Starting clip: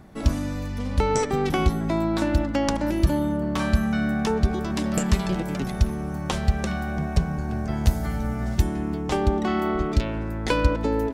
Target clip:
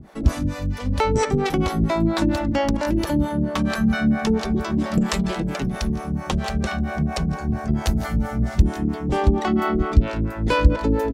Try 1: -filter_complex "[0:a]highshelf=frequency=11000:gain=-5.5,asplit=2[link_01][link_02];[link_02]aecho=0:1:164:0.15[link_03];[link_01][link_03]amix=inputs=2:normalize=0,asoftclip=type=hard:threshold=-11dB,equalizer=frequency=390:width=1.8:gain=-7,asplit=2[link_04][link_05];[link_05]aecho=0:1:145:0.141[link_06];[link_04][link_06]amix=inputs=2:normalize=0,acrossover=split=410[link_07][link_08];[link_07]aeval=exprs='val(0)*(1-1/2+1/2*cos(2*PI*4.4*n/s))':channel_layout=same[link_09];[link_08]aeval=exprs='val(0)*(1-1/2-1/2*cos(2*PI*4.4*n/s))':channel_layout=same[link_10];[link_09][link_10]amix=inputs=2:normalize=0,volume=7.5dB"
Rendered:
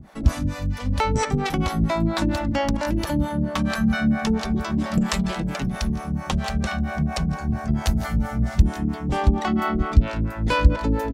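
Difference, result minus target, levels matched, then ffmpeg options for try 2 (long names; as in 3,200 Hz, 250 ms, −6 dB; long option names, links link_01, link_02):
500 Hz band −3.0 dB
-filter_complex "[0:a]highshelf=frequency=11000:gain=-5.5,asplit=2[link_01][link_02];[link_02]aecho=0:1:164:0.15[link_03];[link_01][link_03]amix=inputs=2:normalize=0,asoftclip=type=hard:threshold=-11dB,asplit=2[link_04][link_05];[link_05]aecho=0:1:145:0.141[link_06];[link_04][link_06]amix=inputs=2:normalize=0,acrossover=split=410[link_07][link_08];[link_07]aeval=exprs='val(0)*(1-1/2+1/2*cos(2*PI*4.4*n/s))':channel_layout=same[link_09];[link_08]aeval=exprs='val(0)*(1-1/2-1/2*cos(2*PI*4.4*n/s))':channel_layout=same[link_10];[link_09][link_10]amix=inputs=2:normalize=0,volume=7.5dB"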